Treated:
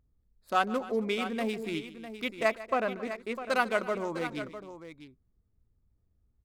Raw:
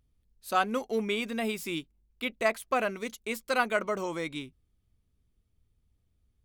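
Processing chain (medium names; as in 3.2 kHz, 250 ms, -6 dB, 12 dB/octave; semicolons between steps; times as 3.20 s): local Wiener filter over 15 samples; 2.59–3.49 s: treble shelf 3.5 kHz -> 5.1 kHz -11 dB; multi-tap echo 148/270/653 ms -17/-19/-11.5 dB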